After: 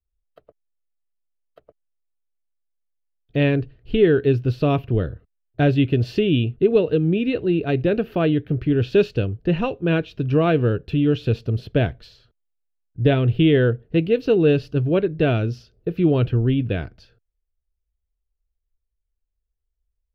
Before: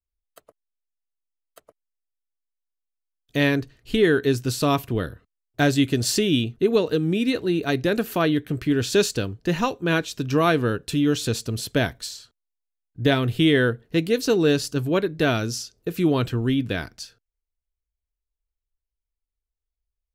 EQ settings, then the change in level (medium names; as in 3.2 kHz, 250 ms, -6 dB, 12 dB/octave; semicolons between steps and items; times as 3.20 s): ten-band graphic EQ 250 Hz -7 dB, 1 kHz -11 dB, 2 kHz -8 dB, 4 kHz -5 dB, 8 kHz -11 dB; dynamic bell 2.7 kHz, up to +8 dB, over -55 dBFS, Q 3.3; distance through air 350 m; +8.0 dB